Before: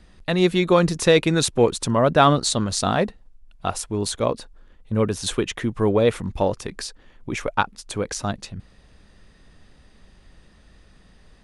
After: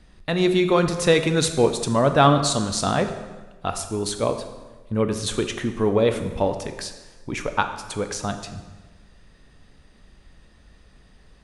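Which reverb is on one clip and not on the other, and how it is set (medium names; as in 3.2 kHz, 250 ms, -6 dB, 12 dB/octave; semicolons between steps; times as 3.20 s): plate-style reverb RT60 1.3 s, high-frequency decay 0.8×, DRR 7 dB; trim -1.5 dB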